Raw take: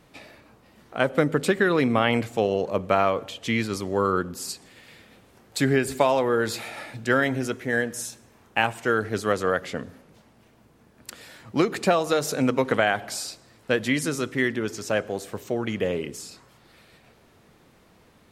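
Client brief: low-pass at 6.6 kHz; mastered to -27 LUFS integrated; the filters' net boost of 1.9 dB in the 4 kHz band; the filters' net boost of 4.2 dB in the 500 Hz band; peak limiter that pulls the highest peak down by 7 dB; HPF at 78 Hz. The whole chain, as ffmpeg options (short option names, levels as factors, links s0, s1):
-af "highpass=78,lowpass=6600,equalizer=f=500:t=o:g=5,equalizer=f=4000:t=o:g=3,volume=0.708,alimiter=limit=0.2:level=0:latency=1"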